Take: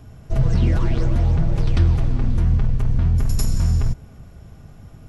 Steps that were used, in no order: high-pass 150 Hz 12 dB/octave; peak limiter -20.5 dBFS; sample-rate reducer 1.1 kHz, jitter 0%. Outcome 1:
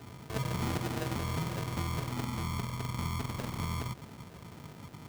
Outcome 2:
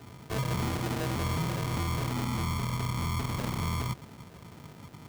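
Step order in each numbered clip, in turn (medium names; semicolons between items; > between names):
sample-rate reducer > peak limiter > high-pass; sample-rate reducer > high-pass > peak limiter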